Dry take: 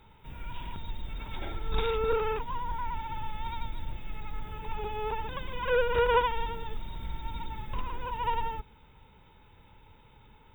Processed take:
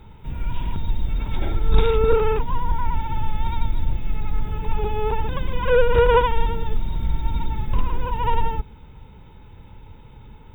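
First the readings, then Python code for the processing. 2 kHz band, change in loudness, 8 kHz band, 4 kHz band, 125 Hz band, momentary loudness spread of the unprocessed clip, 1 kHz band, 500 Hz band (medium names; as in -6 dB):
+5.0 dB, +9.5 dB, no reading, +4.5 dB, +14.5 dB, 15 LU, +6.5 dB, +9.5 dB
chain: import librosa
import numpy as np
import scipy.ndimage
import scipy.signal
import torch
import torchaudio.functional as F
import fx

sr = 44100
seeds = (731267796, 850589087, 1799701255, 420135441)

y = fx.low_shelf(x, sr, hz=440.0, db=10.5)
y = F.gain(torch.from_numpy(y), 4.5).numpy()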